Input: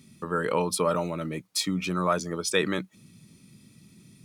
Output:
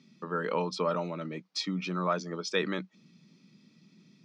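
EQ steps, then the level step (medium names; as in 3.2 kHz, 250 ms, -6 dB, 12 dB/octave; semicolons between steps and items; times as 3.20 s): elliptic band-pass 170–5400 Hz, stop band 40 dB; -4.0 dB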